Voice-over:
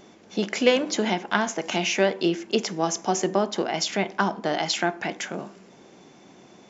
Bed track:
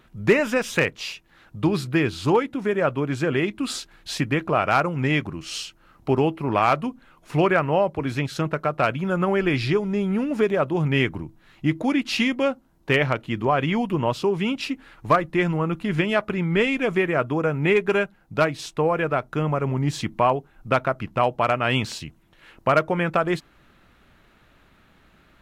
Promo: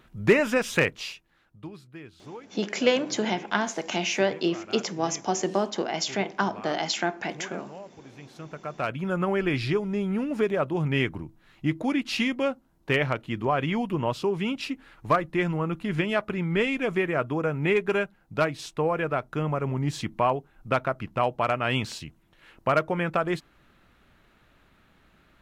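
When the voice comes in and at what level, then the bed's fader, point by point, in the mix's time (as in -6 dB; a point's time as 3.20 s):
2.20 s, -2.5 dB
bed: 0.97 s -1.5 dB
1.80 s -22.5 dB
8.14 s -22.5 dB
9.03 s -4 dB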